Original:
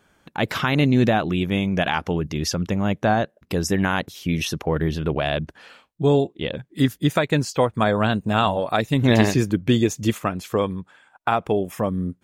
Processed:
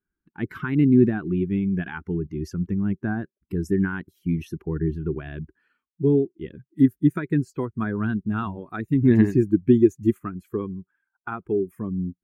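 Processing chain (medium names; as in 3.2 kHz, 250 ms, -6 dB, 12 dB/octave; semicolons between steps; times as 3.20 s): expander on every frequency bin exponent 1.5; FFT filter 140 Hz 0 dB, 380 Hz +7 dB, 550 Hz -21 dB, 1.5 kHz -3 dB, 3.7 kHz -23 dB, 10 kHz -14 dB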